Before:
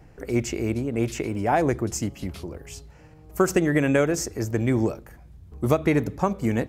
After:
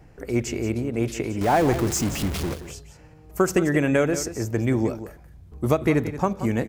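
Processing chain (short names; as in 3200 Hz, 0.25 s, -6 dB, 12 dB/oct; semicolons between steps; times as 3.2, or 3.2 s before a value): 1.41–2.54 zero-crossing step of -25 dBFS; echo 0.178 s -12.5 dB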